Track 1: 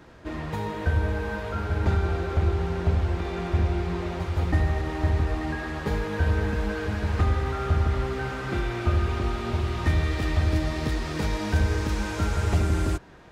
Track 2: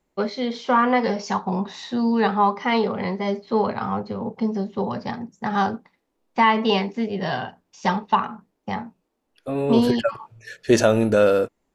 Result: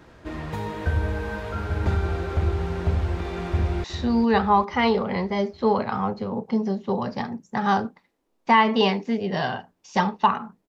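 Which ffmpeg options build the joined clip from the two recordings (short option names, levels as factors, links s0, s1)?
-filter_complex "[0:a]apad=whole_dur=10.68,atrim=end=10.68,atrim=end=3.842[s0];[1:a]atrim=start=1.728:end=8.57[s1];[s0][s1]acrossfade=d=0.004:c1=hsin:c2=hsin,asplit=2[s2][s3];[s3]afade=t=in:st=3.49:d=0.01,afade=t=out:st=3.84:d=0.01,aecho=0:1:400|800|1200|1600|2000|2400:0.334965|0.184231|0.101327|0.0557299|0.0306514|0.0168583[s4];[s2][s4]amix=inputs=2:normalize=0"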